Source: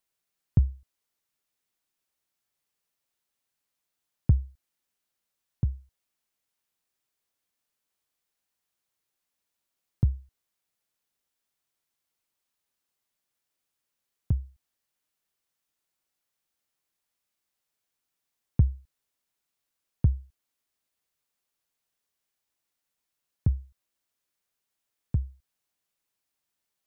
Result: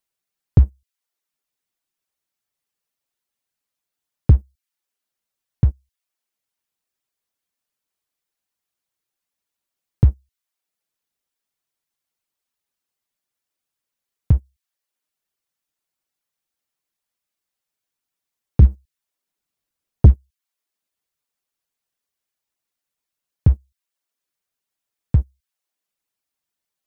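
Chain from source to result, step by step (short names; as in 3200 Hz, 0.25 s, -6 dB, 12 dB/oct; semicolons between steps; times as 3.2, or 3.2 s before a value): reverb removal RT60 0.5 s; 18.62–20.14 low shelf 380 Hz +7 dB; sample leveller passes 2; gain +4 dB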